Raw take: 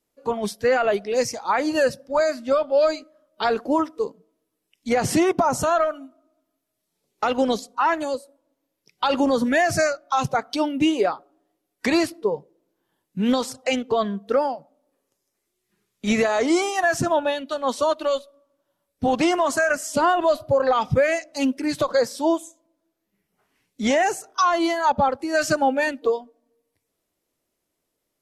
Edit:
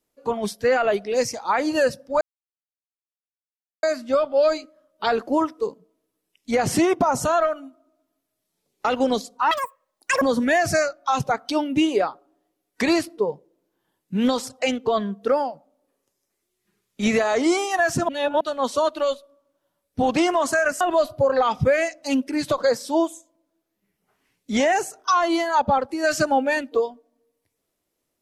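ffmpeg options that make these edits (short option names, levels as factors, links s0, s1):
-filter_complex "[0:a]asplit=7[s0][s1][s2][s3][s4][s5][s6];[s0]atrim=end=2.21,asetpts=PTS-STARTPTS,afade=t=out:st=2.206:d=0.004:c=hsin,apad=pad_dur=1.62[s7];[s1]atrim=start=2.21:end=7.894,asetpts=PTS-STARTPTS,afade=t=in:d=0.004:c=hsin[s8];[s2]atrim=start=7.89:end=9.26,asetpts=PTS-STARTPTS,asetrate=85554,aresample=44100[s9];[s3]atrim=start=9.256:end=17.132[s10];[s4]atrim=start=17.128:end=17.452,asetpts=PTS-STARTPTS,areverse[s11];[s5]atrim=start=17.448:end=19.852[s12];[s6]atrim=start=20.108[s13];[s7][s8]concat=n=2:v=0:a=1[s14];[s14][s9]acrossfade=d=0.004:c1=hsin:c2=hsin[s15];[s15][s10]acrossfade=d=0.004:c1=hsin:c2=hsin[s16];[s16][s11]acrossfade=d=0.004:c1=hsin:c2=hsin[s17];[s17][s12]acrossfade=d=0.004:c1=hsin:c2=hsin[s18];[s18][s13]acrossfade=d=0.004:c1=hsin:c2=hsin"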